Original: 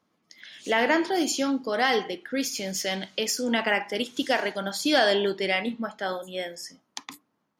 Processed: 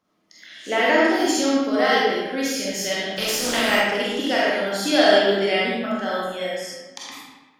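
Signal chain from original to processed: 3.15–3.74 spectral contrast lowered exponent 0.48; digital reverb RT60 1.2 s, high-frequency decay 0.75×, pre-delay 5 ms, DRR -6.5 dB; gain -2 dB

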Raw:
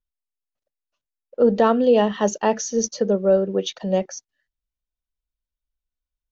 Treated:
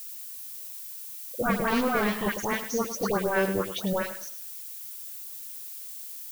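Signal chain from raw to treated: wavefolder -17.5 dBFS; high shelf 4700 Hz -9.5 dB; dispersion highs, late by 0.111 s, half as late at 1600 Hz; added noise violet -38 dBFS; lo-fi delay 0.104 s, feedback 35%, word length 8-bit, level -11 dB; gain -2.5 dB

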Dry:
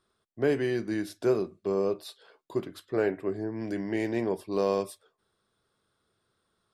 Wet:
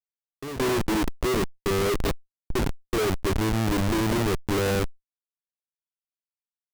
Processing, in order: 1.81–2.66 zero-crossing step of -33.5 dBFS; fifteen-band EQ 100 Hz -6 dB, 1000 Hz -5 dB, 10000 Hz -11 dB; band-limited delay 83 ms, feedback 84%, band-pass 490 Hz, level -22 dB; AGC gain up to 8.5 dB; dynamic EQ 1000 Hz, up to -5 dB, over -39 dBFS, Q 1.6; Schmitt trigger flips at -24 dBFS; gate with hold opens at -21 dBFS; fast leveller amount 50%

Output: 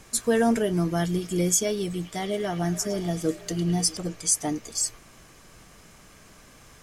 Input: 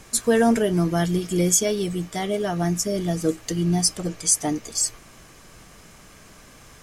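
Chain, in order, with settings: 1.83–3.97 delay with a stepping band-pass 0.106 s, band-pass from 3400 Hz, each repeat -0.7 oct, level -5 dB; gain -3.5 dB

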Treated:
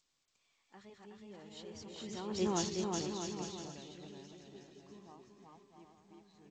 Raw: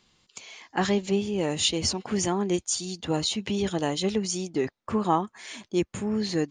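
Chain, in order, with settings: regenerating reverse delay 0.313 s, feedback 44%, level -3 dB; Doppler pass-by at 2.53, 16 m/s, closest 1.1 m; air absorption 63 m; bouncing-ball echo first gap 0.37 s, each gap 0.75×, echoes 5; gain -3.5 dB; G.722 64 kbps 16000 Hz

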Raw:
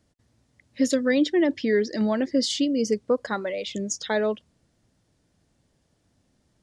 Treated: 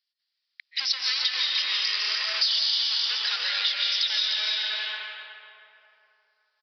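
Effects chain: sample leveller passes 5; high shelf 2400 Hz +11 dB; digital reverb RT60 3 s, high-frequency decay 0.5×, pre-delay 0.115 s, DRR -3 dB; downsampling 11025 Hz; differentiator; echo 0.298 s -6.5 dB; compressor 5:1, threshold -28 dBFS, peak gain reduction 15.5 dB; HPF 1300 Hz 12 dB/oct; gain +4.5 dB

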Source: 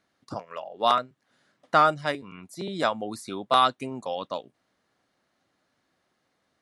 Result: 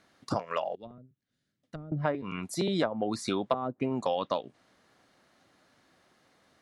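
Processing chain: treble ducked by the level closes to 410 Hz, closed at -19 dBFS; 0.75–1.92 passive tone stack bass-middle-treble 10-0-1; compressor 4:1, threshold -34 dBFS, peak gain reduction 12.5 dB; gain +8 dB

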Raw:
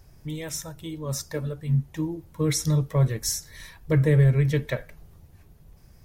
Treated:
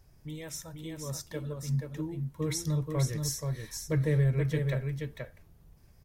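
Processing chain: echo 0.479 s -5 dB; gain -7.5 dB

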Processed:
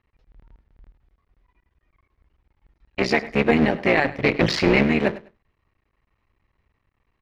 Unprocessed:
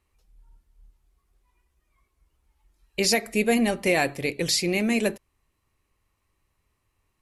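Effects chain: cycle switcher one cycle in 3, muted; bell 1900 Hz +4.5 dB 0.47 oct; 4.24–4.83 sample leveller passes 2; air absorption 260 m; feedback echo 0.101 s, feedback 21%, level -18 dB; gain +5.5 dB

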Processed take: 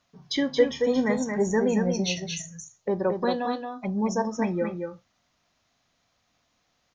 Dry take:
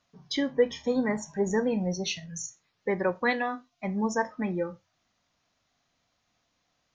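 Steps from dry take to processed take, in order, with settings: 2.38–4.35 envelope phaser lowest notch 220 Hz, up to 2100 Hz, full sweep at -29.5 dBFS; echo 0.225 s -5.5 dB; gain +2.5 dB

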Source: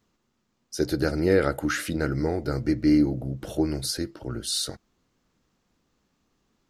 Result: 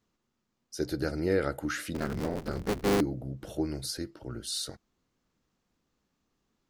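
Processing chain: 1.94–3.01 cycle switcher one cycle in 3, inverted; gain -6.5 dB

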